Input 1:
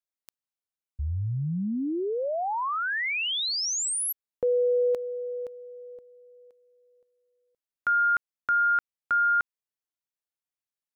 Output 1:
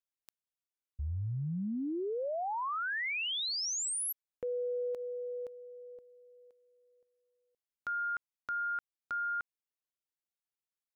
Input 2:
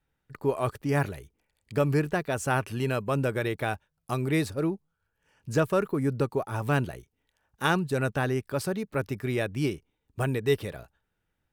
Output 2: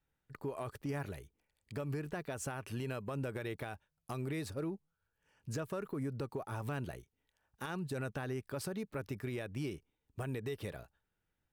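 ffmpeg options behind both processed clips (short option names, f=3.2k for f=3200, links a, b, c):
-af "acompressor=threshold=-26dB:ratio=12:attack=0.31:release=256:knee=1:detection=peak,volume=-6dB"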